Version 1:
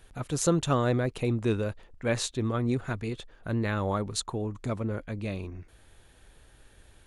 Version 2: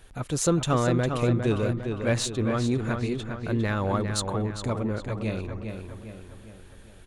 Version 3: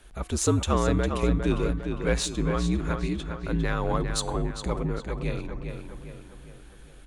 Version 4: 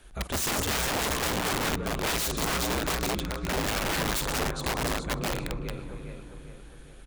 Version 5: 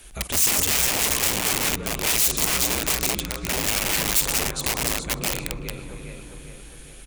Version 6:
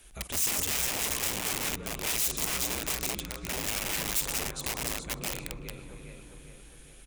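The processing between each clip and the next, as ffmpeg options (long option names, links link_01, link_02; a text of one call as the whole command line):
ffmpeg -i in.wav -filter_complex "[0:a]asplit=2[link_01][link_02];[link_02]asoftclip=type=tanh:threshold=-27.5dB,volume=-7dB[link_03];[link_01][link_03]amix=inputs=2:normalize=0,asplit=2[link_04][link_05];[link_05]adelay=404,lowpass=frequency=4000:poles=1,volume=-6dB,asplit=2[link_06][link_07];[link_07]adelay=404,lowpass=frequency=4000:poles=1,volume=0.49,asplit=2[link_08][link_09];[link_09]adelay=404,lowpass=frequency=4000:poles=1,volume=0.49,asplit=2[link_10][link_11];[link_11]adelay=404,lowpass=frequency=4000:poles=1,volume=0.49,asplit=2[link_12][link_13];[link_13]adelay=404,lowpass=frequency=4000:poles=1,volume=0.49,asplit=2[link_14][link_15];[link_15]adelay=404,lowpass=frequency=4000:poles=1,volume=0.49[link_16];[link_04][link_06][link_08][link_10][link_12][link_14][link_16]amix=inputs=7:normalize=0" out.wav
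ffmpeg -i in.wav -af "bandreject=frequency=392.3:width_type=h:width=4,bandreject=frequency=784.6:width_type=h:width=4,bandreject=frequency=1176.9:width_type=h:width=4,bandreject=frequency=1569.2:width_type=h:width=4,bandreject=frequency=1961.5:width_type=h:width=4,bandreject=frequency=2353.8:width_type=h:width=4,bandreject=frequency=2746.1:width_type=h:width=4,bandreject=frequency=3138.4:width_type=h:width=4,bandreject=frequency=3530.7:width_type=h:width=4,bandreject=frequency=3923:width_type=h:width=4,bandreject=frequency=4315.3:width_type=h:width=4,bandreject=frequency=4707.6:width_type=h:width=4,bandreject=frequency=5099.9:width_type=h:width=4,bandreject=frequency=5492.2:width_type=h:width=4,bandreject=frequency=5884.5:width_type=h:width=4,bandreject=frequency=6276.8:width_type=h:width=4,bandreject=frequency=6669.1:width_type=h:width=4,bandreject=frequency=7061.4:width_type=h:width=4,bandreject=frequency=7453.7:width_type=h:width=4,bandreject=frequency=7846:width_type=h:width=4,bandreject=frequency=8238.3:width_type=h:width=4,bandreject=frequency=8630.6:width_type=h:width=4,bandreject=frequency=9022.9:width_type=h:width=4,bandreject=frequency=9415.2:width_type=h:width=4,bandreject=frequency=9807.5:width_type=h:width=4,bandreject=frequency=10199.8:width_type=h:width=4,bandreject=frequency=10592.1:width_type=h:width=4,bandreject=frequency=10984.4:width_type=h:width=4,bandreject=frequency=11376.7:width_type=h:width=4,bandreject=frequency=11769:width_type=h:width=4,bandreject=frequency=12161.3:width_type=h:width=4,afreqshift=-63" out.wav
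ffmpeg -i in.wav -filter_complex "[0:a]asplit=2[link_01][link_02];[link_02]aecho=0:1:50|127|181|702|835:0.178|0.141|0.2|0.126|0.112[link_03];[link_01][link_03]amix=inputs=2:normalize=0,aeval=exprs='(mod(14.1*val(0)+1,2)-1)/14.1':channel_layout=same" out.wav
ffmpeg -i in.wav -filter_complex "[0:a]asplit=2[link_01][link_02];[link_02]acompressor=threshold=-38dB:ratio=6,volume=-1dB[link_03];[link_01][link_03]amix=inputs=2:normalize=0,aexciter=amount=2.7:drive=3.1:freq=2100,volume=-2dB" out.wav
ffmpeg -i in.wav -af "bandreject=frequency=4400:width=29,volume=-8.5dB" out.wav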